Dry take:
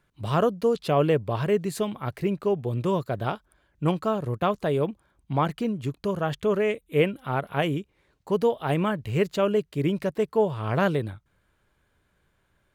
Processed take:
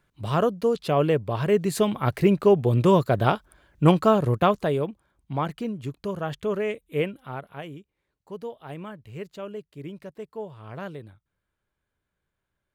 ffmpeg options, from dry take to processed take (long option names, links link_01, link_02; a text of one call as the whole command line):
ffmpeg -i in.wav -af "volume=7dB,afade=type=in:start_time=1.37:duration=0.68:silence=0.446684,afade=type=out:start_time=4.2:duration=0.67:silence=0.316228,afade=type=out:start_time=6.89:duration=0.73:silence=0.316228" out.wav